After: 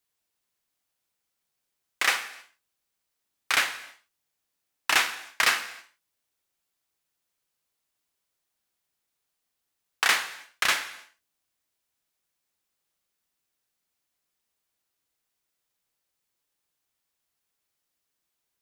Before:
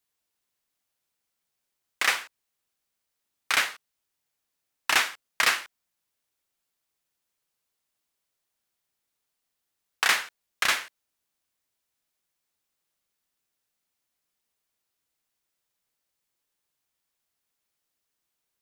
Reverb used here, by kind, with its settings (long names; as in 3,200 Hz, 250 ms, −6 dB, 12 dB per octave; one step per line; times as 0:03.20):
reverb whose tail is shaped and stops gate 340 ms falling, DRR 11 dB